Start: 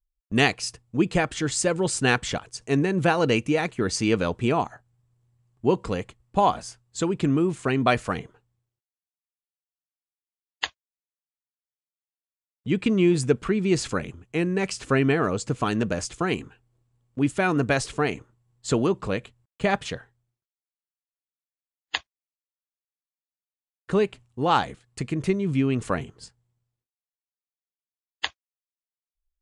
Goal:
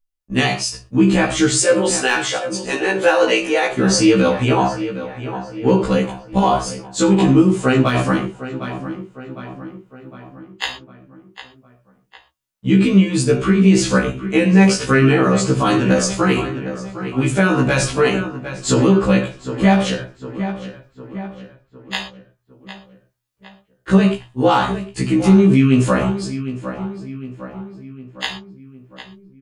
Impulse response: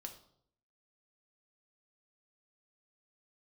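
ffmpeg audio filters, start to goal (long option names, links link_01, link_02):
-filter_complex "[0:a]asettb=1/sr,asplit=3[link_01][link_02][link_03];[link_01]atrim=end=1.594[link_04];[link_02]atrim=start=1.59:end=3.7,asetpts=PTS-STARTPTS,afade=type=in:duration=0.004:curve=qsin,afade=type=out:start_time=2.106:duration=0.004:curve=qsin,highpass=frequency=370:width=0.5412,highpass=frequency=370:width=1.3066[link_05];[link_03]atrim=start=3.696[link_06];[link_04][link_05]acrossfade=duration=0.004:curve1=hsin:curve2=qsin[link_07];[link_07][link_06]acrossfade=duration=0.004:curve1=qsin:curve2=hsin,dynaudnorm=framelen=180:gausssize=5:maxgain=11dB,asoftclip=type=hard:threshold=-3.5dB,asplit=2[link_08][link_09];[link_09]adelay=757,lowpass=frequency=3100:poles=1,volume=-14dB,asplit=2[link_10][link_11];[link_11]adelay=757,lowpass=frequency=3100:poles=1,volume=0.53,asplit=2[link_12][link_13];[link_13]adelay=757,lowpass=frequency=3100:poles=1,volume=0.53,asplit=2[link_14][link_15];[link_15]adelay=757,lowpass=frequency=3100:poles=1,volume=0.53,asplit=2[link_16][link_17];[link_17]adelay=757,lowpass=frequency=3100:poles=1,volume=0.53[link_18];[link_08][link_10][link_12][link_14][link_16][link_18]amix=inputs=6:normalize=0[link_19];[1:a]atrim=start_sample=2205,afade=type=out:start_time=0.18:duration=0.01,atrim=end_sample=8379[link_20];[link_19][link_20]afir=irnorm=-1:irlink=0,alimiter=level_in=12dB:limit=-1dB:release=50:level=0:latency=1,afftfilt=real='re*1.73*eq(mod(b,3),0)':imag='im*1.73*eq(mod(b,3),0)':win_size=2048:overlap=0.75,volume=-2dB"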